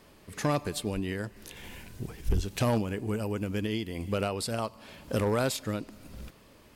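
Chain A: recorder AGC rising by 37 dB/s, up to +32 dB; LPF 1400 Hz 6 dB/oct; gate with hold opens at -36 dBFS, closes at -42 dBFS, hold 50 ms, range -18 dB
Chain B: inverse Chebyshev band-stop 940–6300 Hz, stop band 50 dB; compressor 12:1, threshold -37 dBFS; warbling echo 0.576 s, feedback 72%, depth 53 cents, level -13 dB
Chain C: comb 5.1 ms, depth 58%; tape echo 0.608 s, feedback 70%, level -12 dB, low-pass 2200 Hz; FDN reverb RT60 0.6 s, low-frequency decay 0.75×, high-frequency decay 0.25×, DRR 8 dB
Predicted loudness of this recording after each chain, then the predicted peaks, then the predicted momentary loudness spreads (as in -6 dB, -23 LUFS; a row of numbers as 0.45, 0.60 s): -33.0, -43.5, -30.5 LUFS; -19.5, -28.0, -14.5 dBFS; 12, 8, 14 LU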